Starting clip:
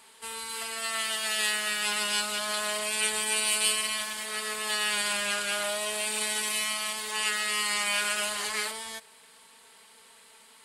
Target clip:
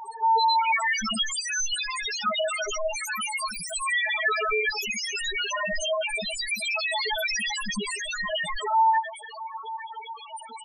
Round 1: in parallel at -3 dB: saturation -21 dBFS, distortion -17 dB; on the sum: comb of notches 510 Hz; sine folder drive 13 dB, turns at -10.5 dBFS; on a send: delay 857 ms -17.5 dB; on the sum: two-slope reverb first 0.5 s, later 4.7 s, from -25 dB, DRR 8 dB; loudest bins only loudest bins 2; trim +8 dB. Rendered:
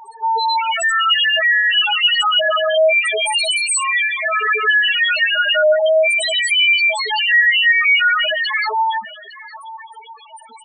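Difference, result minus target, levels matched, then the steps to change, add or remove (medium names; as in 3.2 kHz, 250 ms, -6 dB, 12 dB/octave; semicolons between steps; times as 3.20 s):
sine folder: distortion -16 dB
change: sine folder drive 13 dB, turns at -17.5 dBFS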